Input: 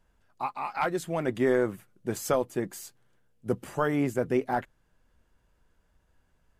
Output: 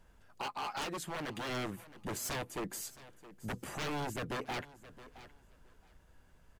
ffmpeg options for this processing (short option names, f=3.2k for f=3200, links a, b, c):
-filter_complex "[0:a]asplit=2[a][b];[b]acompressor=threshold=-35dB:ratio=6,volume=-2dB[c];[a][c]amix=inputs=2:normalize=0,aeval=exprs='0.0447*(abs(mod(val(0)/0.0447+3,4)-2)-1)':c=same,asettb=1/sr,asplit=3[d][e][f];[d]atrim=end=0.844[g];[e]atrim=start=0.84:end=1.49,asetpts=PTS-STARTPTS,afade=t=in:d=0.004:c=qsin,afade=t=out:st=0.646:d=0.004:c=qsin,lowshelf=f=200:g=-6.5[h];[f]atrim=start=1.486[i];[g][h]acrossfade=d=0.004:c1=hsin:c2=qsin[j];[j][i]acrossfade=d=0.004:c1=qsin:c2=hsin,aecho=1:1:668|1336:0.0841|0.0143,alimiter=level_in=8dB:limit=-24dB:level=0:latency=1:release=294,volume=-8dB"